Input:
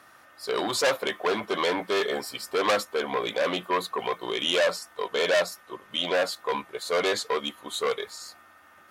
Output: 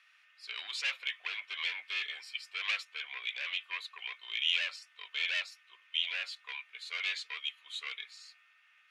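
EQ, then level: ladder band-pass 2.8 kHz, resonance 60%; +4.0 dB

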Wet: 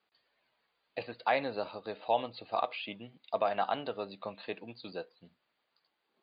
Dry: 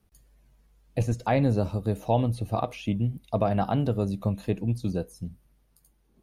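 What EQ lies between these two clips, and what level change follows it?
Bessel high-pass 920 Hz, order 2; brick-wall FIR low-pass 4.9 kHz; +2.0 dB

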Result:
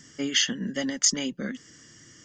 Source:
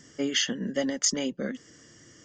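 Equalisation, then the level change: peaking EQ 66 Hz -4 dB 1.2 oct; peaking EQ 530 Hz -8.5 dB 1.6 oct; +3.5 dB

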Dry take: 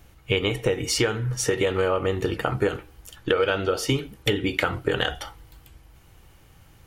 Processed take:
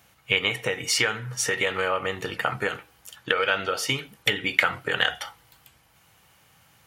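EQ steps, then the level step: high-pass 190 Hz 12 dB/octave; peaking EQ 340 Hz -12 dB 1.1 oct; dynamic bell 2 kHz, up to +6 dB, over -40 dBFS, Q 1.7; +1.0 dB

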